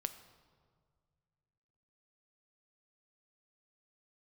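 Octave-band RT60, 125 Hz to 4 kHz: 2.9, 2.5, 2.0, 1.8, 1.3, 1.1 s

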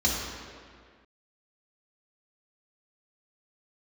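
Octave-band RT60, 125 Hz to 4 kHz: 1.7, 2.0, 1.9, 2.0, 1.9, 1.5 s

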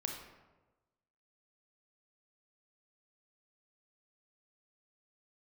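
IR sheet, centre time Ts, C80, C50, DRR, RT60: 40 ms, 7.0 dB, 4.0 dB, 1.5 dB, 1.2 s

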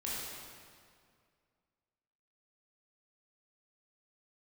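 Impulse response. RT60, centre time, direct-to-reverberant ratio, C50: 2.1 s, 0.137 s, -7.5 dB, -3.0 dB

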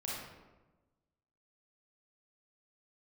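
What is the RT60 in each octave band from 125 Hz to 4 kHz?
1.5, 1.4, 1.3, 1.1, 0.90, 0.65 s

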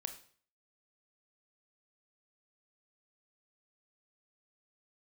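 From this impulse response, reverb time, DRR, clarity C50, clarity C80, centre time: 0.50 s, 7.0 dB, 11.0 dB, 14.5 dB, 10 ms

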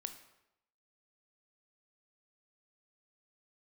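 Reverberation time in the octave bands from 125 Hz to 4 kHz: 0.85, 0.80, 0.85, 0.85, 0.75, 0.70 s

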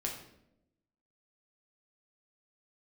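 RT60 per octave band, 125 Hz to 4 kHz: 1.1, 1.2, 1.0, 0.65, 0.65, 0.55 s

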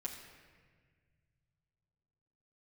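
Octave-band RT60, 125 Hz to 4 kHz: 3.8, 2.5, 1.9, 1.5, 1.7, 1.2 s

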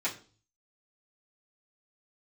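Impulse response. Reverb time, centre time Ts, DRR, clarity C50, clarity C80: 0.40 s, 16 ms, -10.5 dB, 12.5 dB, 17.5 dB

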